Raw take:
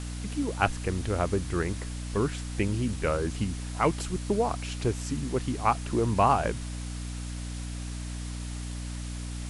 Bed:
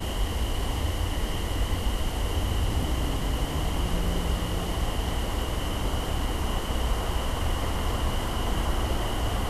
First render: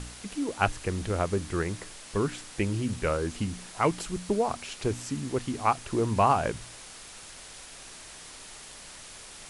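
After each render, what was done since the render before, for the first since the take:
hum removal 60 Hz, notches 5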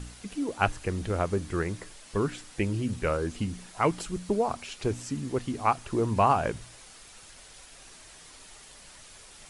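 broadband denoise 6 dB, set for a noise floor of −46 dBFS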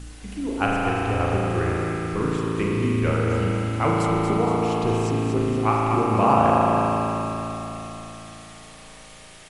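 on a send: repeating echo 234 ms, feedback 57%, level −6.5 dB
on the sum: spring reverb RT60 3.7 s, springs 36 ms, chirp 45 ms, DRR −4.5 dB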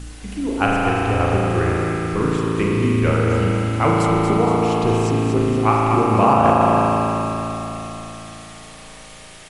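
level +4.5 dB
brickwall limiter −3 dBFS, peak gain reduction 3 dB

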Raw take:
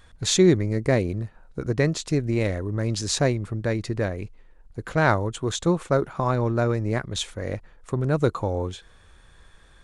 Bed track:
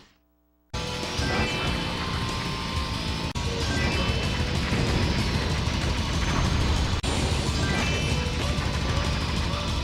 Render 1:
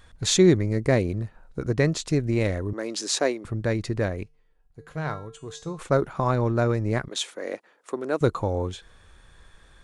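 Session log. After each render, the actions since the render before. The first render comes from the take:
0:02.73–0:03.45: high-pass filter 280 Hz 24 dB per octave
0:04.23–0:05.79: tuned comb filter 150 Hz, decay 0.42 s, harmonics odd, mix 80%
0:07.08–0:08.21: high-pass filter 280 Hz 24 dB per octave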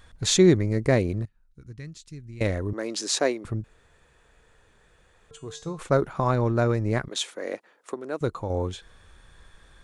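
0:01.25–0:02.41: guitar amp tone stack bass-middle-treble 6-0-2
0:03.64–0:05.31: fill with room tone
0:07.94–0:08.50: clip gain −5.5 dB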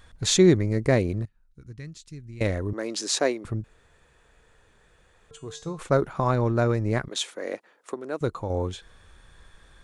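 no processing that can be heard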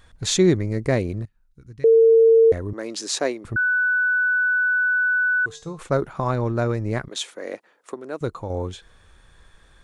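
0:01.84–0:02.52: beep over 453 Hz −10 dBFS
0:03.56–0:05.46: beep over 1,490 Hz −17 dBFS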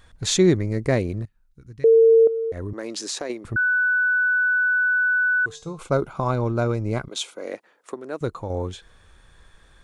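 0:02.27–0:03.30: downward compressor, threshold −25 dBFS
0:05.55–0:07.48: Butterworth band-reject 1,800 Hz, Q 4.8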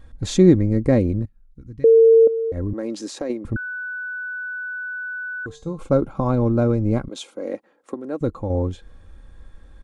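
tilt shelving filter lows +8 dB, about 700 Hz
comb filter 3.7 ms, depth 43%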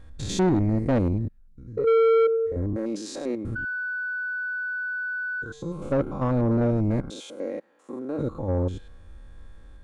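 spectrum averaged block by block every 100 ms
soft clipping −16.5 dBFS, distortion −8 dB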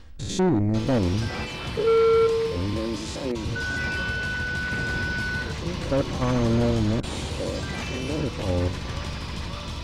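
mix in bed track −6 dB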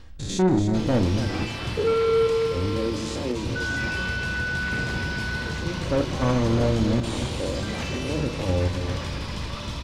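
delay that plays each chunk backwards 484 ms, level −11.5 dB
on a send: loudspeakers that aren't time-aligned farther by 11 metres −10 dB, 97 metres −11 dB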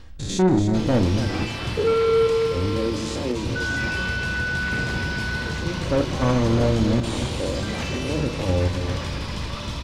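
level +2 dB

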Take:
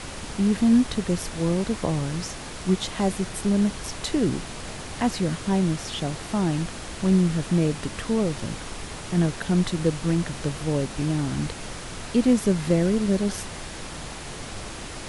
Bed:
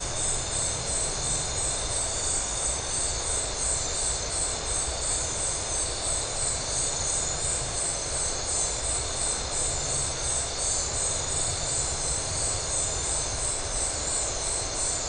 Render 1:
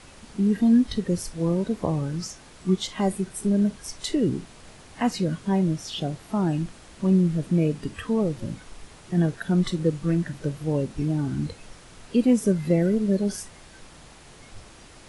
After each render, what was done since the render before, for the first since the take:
noise reduction from a noise print 12 dB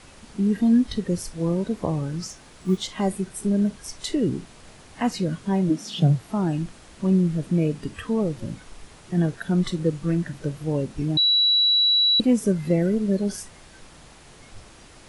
0:02.26–0:02.86: one scale factor per block 7 bits
0:05.69–0:06.20: high-pass with resonance 280 Hz → 120 Hz, resonance Q 5.6
0:11.17–0:12.20: beep over 3,920 Hz −15.5 dBFS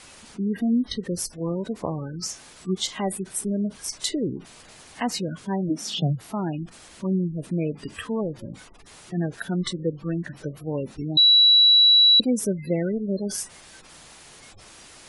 gate on every frequency bin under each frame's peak −30 dB strong
spectral tilt +2 dB per octave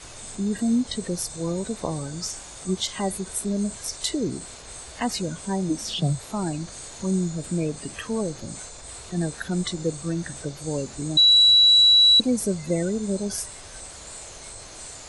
mix in bed −12.5 dB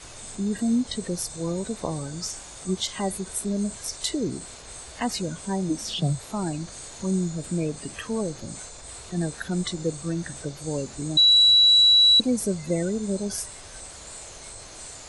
level −1 dB

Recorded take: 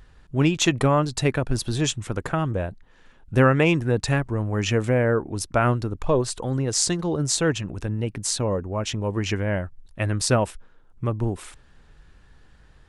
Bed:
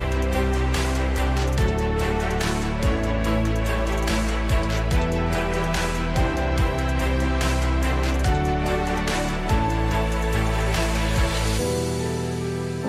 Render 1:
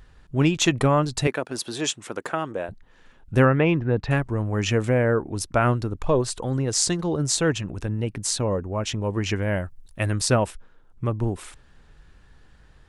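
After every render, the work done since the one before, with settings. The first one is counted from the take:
0:01.27–0:02.69: high-pass filter 310 Hz
0:03.45–0:04.11: high-frequency loss of the air 300 metres
0:09.42–0:10.21: high-shelf EQ 6,800 Hz +12 dB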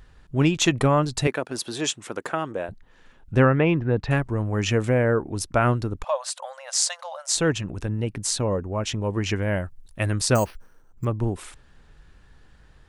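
0:03.34–0:03.78: high-frequency loss of the air 62 metres
0:06.04–0:07.35: linear-phase brick-wall high-pass 520 Hz
0:10.35–0:11.05: bad sample-rate conversion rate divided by 6×, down filtered, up hold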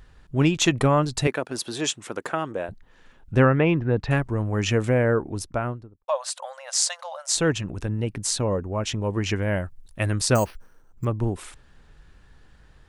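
0:05.16–0:06.08: fade out and dull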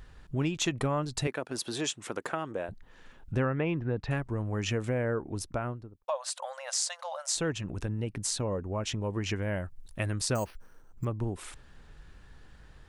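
downward compressor 2 to 1, threshold −34 dBFS, peak gain reduction 12 dB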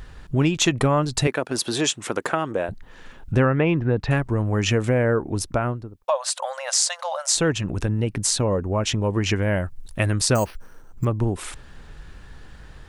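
level +10 dB

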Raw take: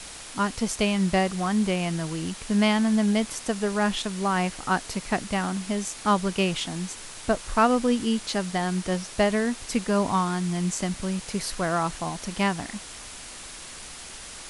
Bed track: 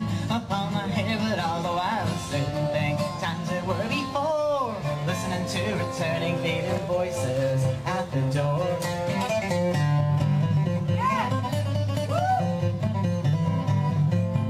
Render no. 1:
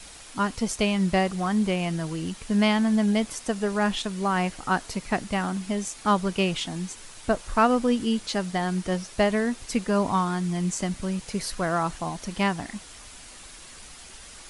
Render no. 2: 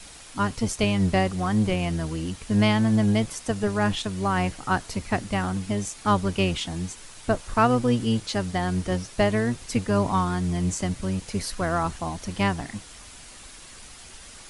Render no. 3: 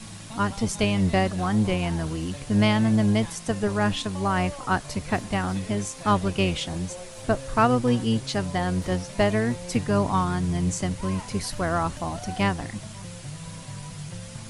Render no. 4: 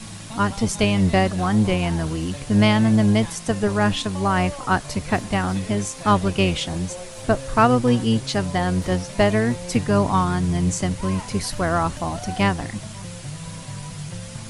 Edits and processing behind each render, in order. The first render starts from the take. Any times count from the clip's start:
broadband denoise 6 dB, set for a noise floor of −41 dBFS
sub-octave generator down 1 octave, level −3 dB
mix in bed track −15 dB
level +4 dB

